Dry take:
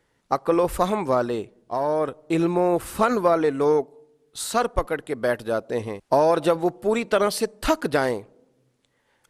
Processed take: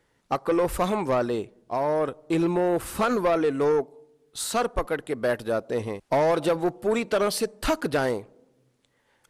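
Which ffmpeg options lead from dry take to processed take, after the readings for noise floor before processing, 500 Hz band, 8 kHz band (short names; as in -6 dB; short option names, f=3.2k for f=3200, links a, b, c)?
-69 dBFS, -2.5 dB, -0.5 dB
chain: -af "asoftclip=type=tanh:threshold=-16dB"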